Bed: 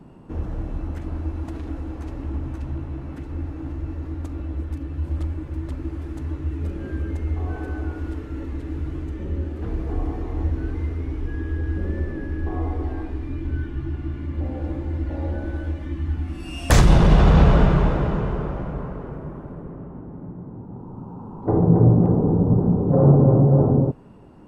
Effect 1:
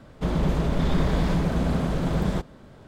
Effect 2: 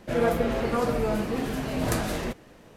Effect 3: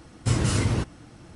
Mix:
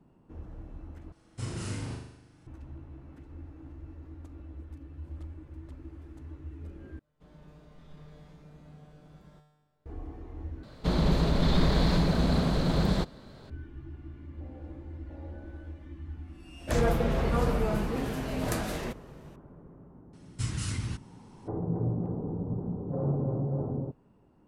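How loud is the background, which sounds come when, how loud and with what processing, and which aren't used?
bed −15.5 dB
0:01.12: overwrite with 3 −15.5 dB + flutter between parallel walls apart 6.8 metres, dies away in 0.81 s
0:06.99: overwrite with 1 −14 dB + tuned comb filter 150 Hz, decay 1.1 s, mix 90%
0:10.63: overwrite with 1 −1.5 dB + parametric band 4,200 Hz +13 dB 0.34 octaves
0:16.60: mix in 2 −4.5 dB
0:20.13: mix in 3 −7.5 dB + parametric band 540 Hz −14.5 dB 1.8 octaves

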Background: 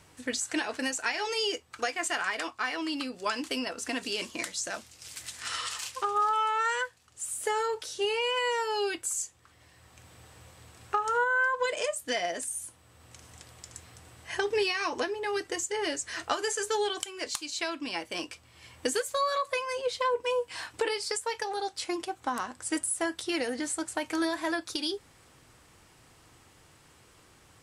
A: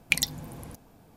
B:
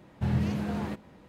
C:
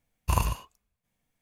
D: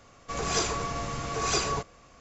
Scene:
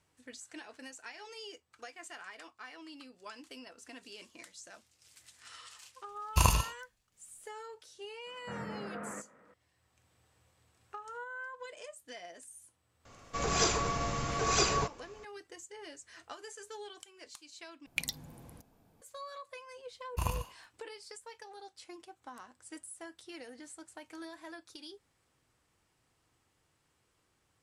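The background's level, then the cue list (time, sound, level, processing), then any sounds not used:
background −17 dB
0:06.08: mix in C −1 dB + parametric band 5,400 Hz +8.5 dB 2.2 octaves
0:08.26: mix in B −5 dB + loudspeaker in its box 320–2,100 Hz, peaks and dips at 350 Hz −8 dB, 500 Hz +4 dB, 840 Hz −6 dB, 1,300 Hz +9 dB, 1,900 Hz +4 dB
0:13.05: mix in D −1 dB
0:17.86: overwrite with A −10.5 dB
0:19.89: mix in C −8.5 dB

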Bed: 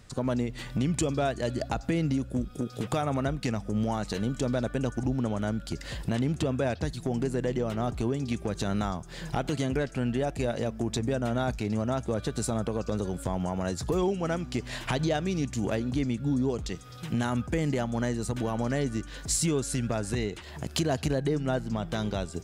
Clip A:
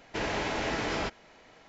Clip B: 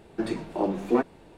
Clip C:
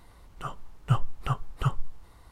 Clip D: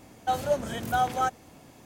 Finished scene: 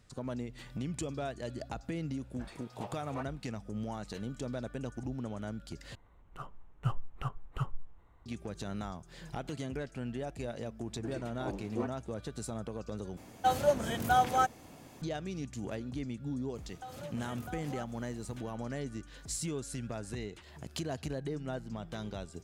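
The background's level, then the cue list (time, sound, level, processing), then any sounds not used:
bed −10 dB
0:02.21: mix in B −12 dB + high-pass filter 660 Hz 24 dB per octave
0:05.95: overwrite with C −8.5 dB + adaptive Wiener filter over 9 samples
0:10.85: mix in B −13.5 dB
0:13.17: overwrite with D −1 dB
0:16.55: mix in D −7.5 dB + downward compressor, threshold −35 dBFS
not used: A

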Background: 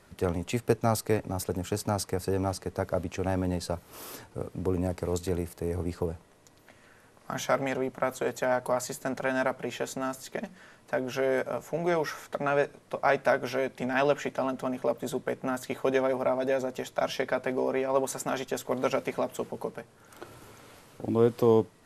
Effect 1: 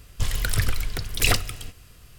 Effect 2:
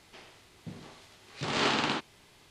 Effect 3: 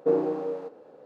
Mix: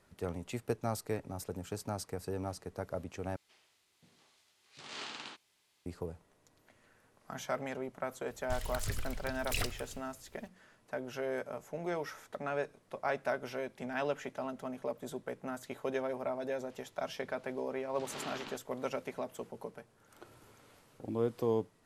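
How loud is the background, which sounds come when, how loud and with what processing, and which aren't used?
background −9.5 dB
0:03.36: overwrite with 2 −18 dB + spectral tilt +2.5 dB per octave
0:08.30: mix in 1 −14.5 dB
0:16.57: mix in 2 −16.5 dB
not used: 3

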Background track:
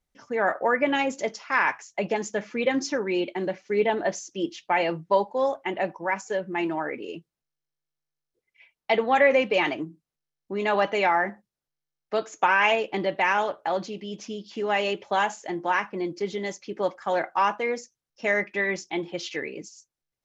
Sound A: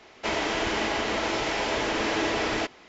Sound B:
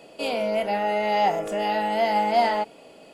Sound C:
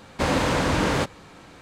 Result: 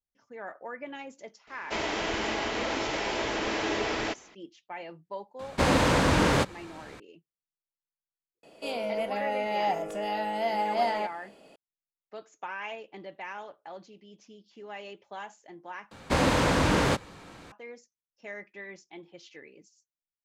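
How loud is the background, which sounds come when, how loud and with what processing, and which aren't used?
background track −17 dB
0:01.47: mix in A −3.5 dB
0:05.39: mix in C −0.5 dB
0:08.43: mix in B −6.5 dB
0:15.91: overwrite with C −1.5 dB

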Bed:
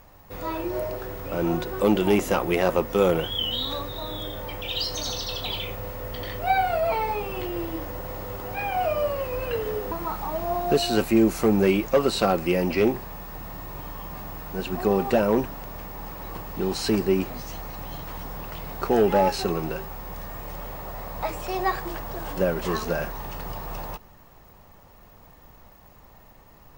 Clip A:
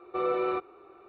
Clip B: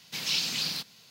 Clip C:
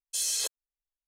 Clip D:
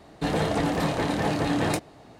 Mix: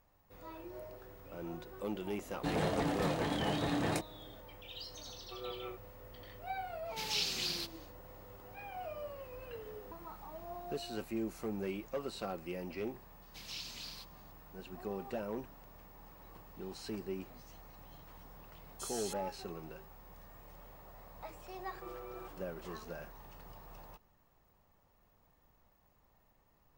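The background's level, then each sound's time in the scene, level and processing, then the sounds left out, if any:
bed −19 dB
0:02.22: mix in D −9 dB
0:05.17: mix in A −15 dB + rotating-speaker cabinet horn 5.5 Hz
0:06.84: mix in B −6.5 dB, fades 0.10 s
0:13.22: mix in B −16.5 dB
0:18.66: mix in C −14.5 dB
0:21.68: mix in A −7 dB + downward compressor, threshold −39 dBFS

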